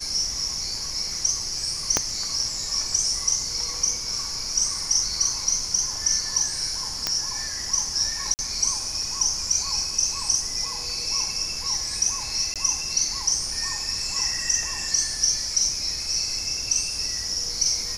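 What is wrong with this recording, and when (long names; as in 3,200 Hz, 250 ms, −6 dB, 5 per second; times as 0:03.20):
0:01.97: click −4 dBFS
0:07.07: click −7 dBFS
0:08.34–0:08.39: drop-out 49 ms
0:12.54–0:12.56: drop-out 17 ms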